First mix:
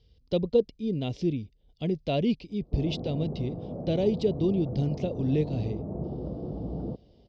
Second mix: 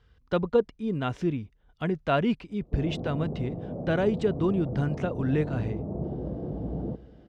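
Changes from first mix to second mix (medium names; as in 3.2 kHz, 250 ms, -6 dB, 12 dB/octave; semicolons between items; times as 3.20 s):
speech: remove FFT filter 550 Hz 0 dB, 1.5 kHz -25 dB, 2.2 kHz -6 dB, 4.9 kHz +9 dB, 8.5 kHz -12 dB; reverb: on, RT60 2.7 s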